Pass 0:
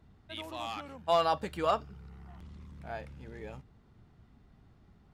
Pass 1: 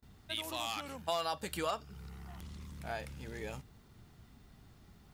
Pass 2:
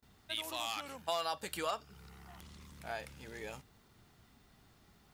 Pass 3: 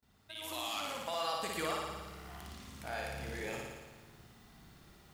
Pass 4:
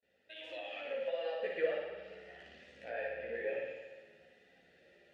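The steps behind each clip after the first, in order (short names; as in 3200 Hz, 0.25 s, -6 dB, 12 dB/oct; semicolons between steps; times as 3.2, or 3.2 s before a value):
gate with hold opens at -53 dBFS; pre-emphasis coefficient 0.8; compressor 3:1, threshold -50 dBFS, peak gain reduction 12 dB; gain +15 dB
low shelf 270 Hz -9 dB
limiter -30 dBFS, peak gain reduction 9 dB; AGC gain up to 9.5 dB; flutter echo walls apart 9.8 m, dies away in 1.3 s; gain -7 dB
chorus voices 4, 0.41 Hz, delay 14 ms, depth 2.9 ms; treble ducked by the level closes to 2500 Hz, closed at -39.5 dBFS; vowel filter e; gain +14 dB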